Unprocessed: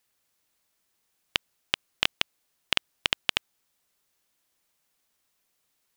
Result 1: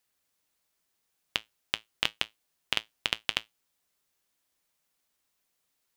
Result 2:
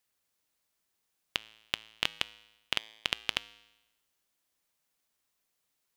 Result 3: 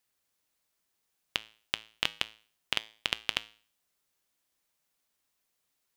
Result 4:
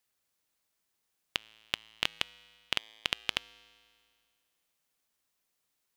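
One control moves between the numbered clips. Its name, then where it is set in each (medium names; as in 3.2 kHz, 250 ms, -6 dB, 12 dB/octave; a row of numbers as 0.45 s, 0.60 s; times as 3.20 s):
feedback comb, decay: 0.16 s, 1 s, 0.44 s, 2.1 s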